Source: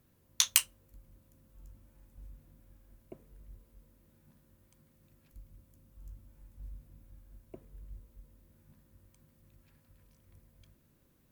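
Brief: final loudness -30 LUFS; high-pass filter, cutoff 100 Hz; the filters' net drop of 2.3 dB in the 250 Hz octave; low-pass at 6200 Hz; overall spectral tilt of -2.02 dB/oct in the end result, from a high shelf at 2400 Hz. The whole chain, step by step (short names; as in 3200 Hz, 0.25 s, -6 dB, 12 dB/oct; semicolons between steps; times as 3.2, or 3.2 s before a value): HPF 100 Hz; LPF 6200 Hz; bell 250 Hz -3 dB; high shelf 2400 Hz -5 dB; gain +9 dB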